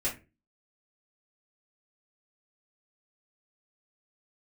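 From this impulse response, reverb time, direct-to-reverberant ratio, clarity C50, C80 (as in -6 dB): 0.30 s, -8.5 dB, 11.0 dB, 18.5 dB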